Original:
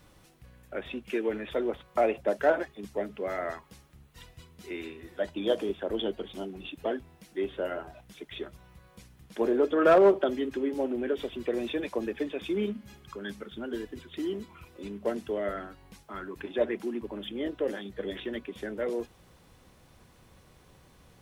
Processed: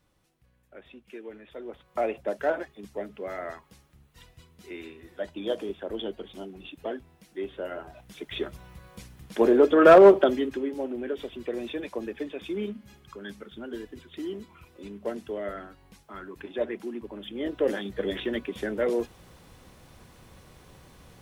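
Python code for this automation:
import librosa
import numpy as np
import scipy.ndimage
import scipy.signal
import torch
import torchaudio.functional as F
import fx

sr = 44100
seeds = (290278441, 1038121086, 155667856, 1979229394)

y = fx.gain(x, sr, db=fx.line((1.54, -12.0), (2.0, -2.5), (7.67, -2.5), (8.38, 6.5), (10.22, 6.5), (10.75, -2.0), (17.25, -2.0), (17.67, 5.5)))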